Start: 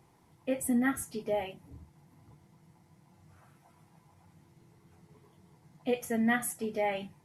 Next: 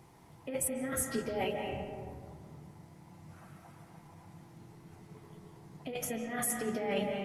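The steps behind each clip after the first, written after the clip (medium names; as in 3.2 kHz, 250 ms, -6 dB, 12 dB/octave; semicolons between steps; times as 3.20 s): compressor with a negative ratio -36 dBFS, ratio -1; on a send at -2 dB: reverberation RT60 2.0 s, pre-delay 115 ms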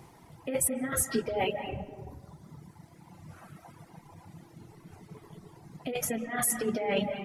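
reverb removal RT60 1.6 s; trim +6 dB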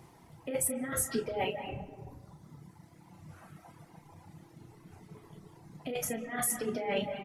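doubling 33 ms -9 dB; trim -3.5 dB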